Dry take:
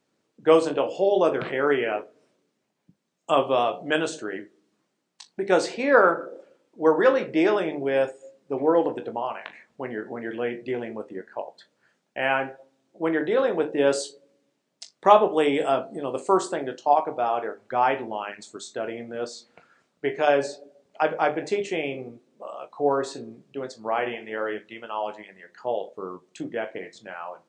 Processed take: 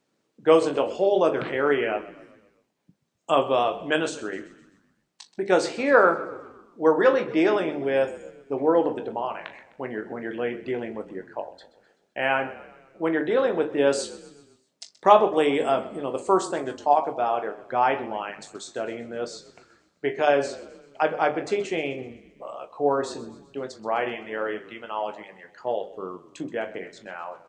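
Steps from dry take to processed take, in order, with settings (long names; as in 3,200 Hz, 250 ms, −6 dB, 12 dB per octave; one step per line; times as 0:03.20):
echo with shifted repeats 128 ms, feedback 53%, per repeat −33 Hz, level −17.5 dB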